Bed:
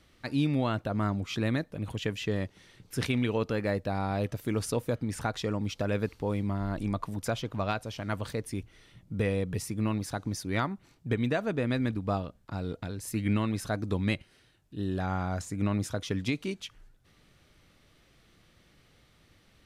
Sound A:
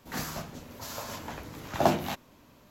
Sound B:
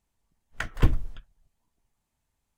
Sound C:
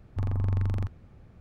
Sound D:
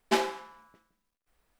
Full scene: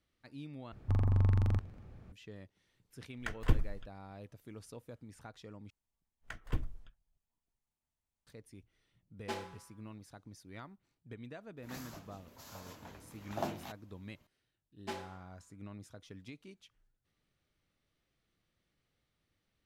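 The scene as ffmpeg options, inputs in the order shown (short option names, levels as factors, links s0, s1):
-filter_complex "[2:a]asplit=2[s0][s1];[4:a]asplit=2[s2][s3];[0:a]volume=0.106[s4];[3:a]aecho=1:1:237:0.0631[s5];[s4]asplit=3[s6][s7][s8];[s6]atrim=end=0.724[s9];[s5]atrim=end=1.4,asetpts=PTS-STARTPTS,volume=0.891[s10];[s7]atrim=start=2.116:end=5.704[s11];[s1]atrim=end=2.57,asetpts=PTS-STARTPTS,volume=0.2[s12];[s8]atrim=start=8.266[s13];[s0]atrim=end=2.57,asetpts=PTS-STARTPTS,volume=0.422,afade=t=in:d=0.004:c=hsin,afade=t=out:st=2.566:d=0.004:c=hsin,adelay=2660[s14];[s2]atrim=end=1.59,asetpts=PTS-STARTPTS,volume=0.188,afade=t=in:d=0.004:c=hsin,afade=t=out:st=1.586:d=0.004:c=hsin,adelay=9170[s15];[1:a]atrim=end=2.7,asetpts=PTS-STARTPTS,volume=0.211,afade=t=in:d=0.004:c=hsin,afade=t=out:st=2.696:d=0.004:c=hsin,adelay=11570[s16];[s3]atrim=end=1.59,asetpts=PTS-STARTPTS,volume=0.158,afade=t=in:d=0.004:c=hsin,afade=t=out:st=1.586:d=0.004:c=hsin,adelay=650916S[s17];[s9][s10]acrossfade=d=0.004:c1=hsin:c2=hsin[s18];[s18][s11]acrossfade=d=0.004:c1=hsin:c2=hsin[s19];[s19][s12]acrossfade=d=0.004:c1=hsin:c2=hsin[s20];[s20][s13]acrossfade=d=0.004:c1=hsin:c2=hsin[s21];[s21][s14][s15][s16][s17]amix=inputs=5:normalize=0"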